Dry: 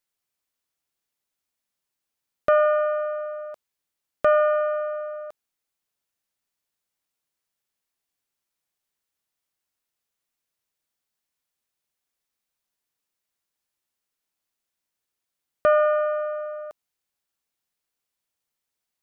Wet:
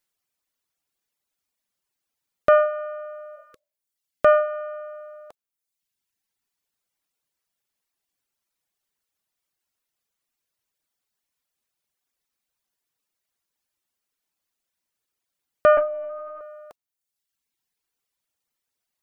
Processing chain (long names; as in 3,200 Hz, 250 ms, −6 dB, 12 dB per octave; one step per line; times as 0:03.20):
reverb reduction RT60 1.1 s
0:03.39–0:03.82: healed spectral selection 520–1,100 Hz both
0:15.77–0:16.41: linear-prediction vocoder at 8 kHz pitch kept
level +3.5 dB